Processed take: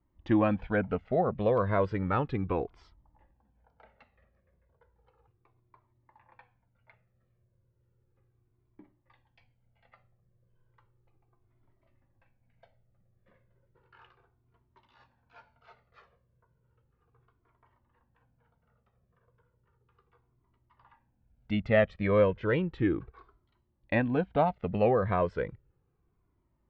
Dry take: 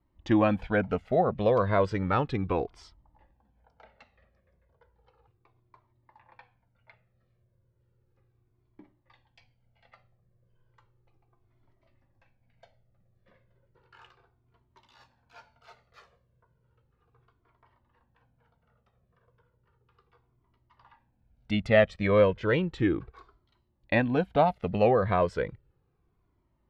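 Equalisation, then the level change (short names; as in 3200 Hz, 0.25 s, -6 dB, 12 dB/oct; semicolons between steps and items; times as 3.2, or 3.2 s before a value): Bessel low-pass 2400 Hz, order 2; bell 690 Hz -2 dB; -1.5 dB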